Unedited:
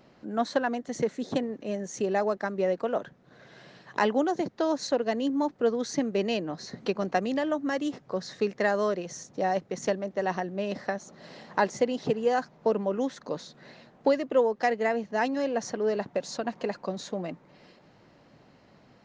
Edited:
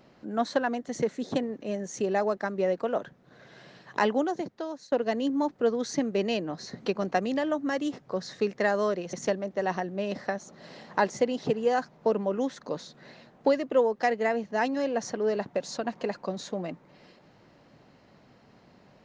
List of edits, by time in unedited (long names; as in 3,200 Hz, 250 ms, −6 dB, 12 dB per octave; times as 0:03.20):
0:04.09–0:04.92: fade out linear, to −21 dB
0:09.13–0:09.73: remove